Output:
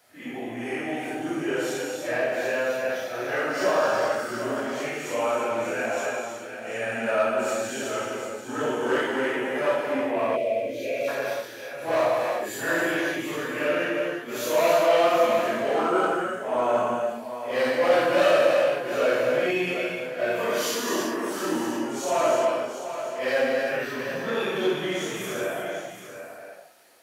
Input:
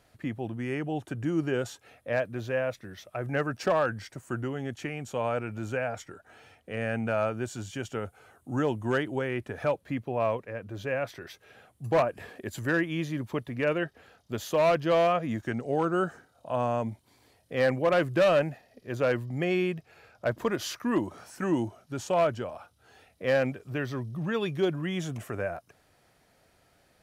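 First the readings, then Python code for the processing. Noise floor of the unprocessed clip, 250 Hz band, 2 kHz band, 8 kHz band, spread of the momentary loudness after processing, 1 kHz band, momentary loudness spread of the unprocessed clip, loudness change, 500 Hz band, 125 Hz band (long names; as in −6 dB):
−66 dBFS, +1.0 dB, +6.5 dB, +10.5 dB, 11 LU, +6.0 dB, 13 LU, +4.5 dB, +5.5 dB, −9.5 dB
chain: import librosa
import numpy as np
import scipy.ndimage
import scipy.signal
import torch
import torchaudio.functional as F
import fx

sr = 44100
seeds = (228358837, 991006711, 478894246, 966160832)

p1 = fx.phase_scramble(x, sr, seeds[0], window_ms=200)
p2 = fx.rev_gated(p1, sr, seeds[1], gate_ms=390, shape='flat', drr_db=-1.0)
p3 = 10.0 ** (-25.5 / 20.0) * np.tanh(p2 / 10.0 ** (-25.5 / 20.0))
p4 = p2 + (p3 * librosa.db_to_amplitude(-5.0))
p5 = fx.high_shelf(p4, sr, hz=8300.0, db=8.5)
p6 = p5 + fx.echo_single(p5, sr, ms=740, db=-10.0, dry=0)
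p7 = fx.spec_box(p6, sr, start_s=10.36, length_s=0.72, low_hz=710.0, high_hz=1900.0, gain_db=-22)
y = scipy.signal.sosfilt(scipy.signal.butter(2, 360.0, 'highpass', fs=sr, output='sos'), p7)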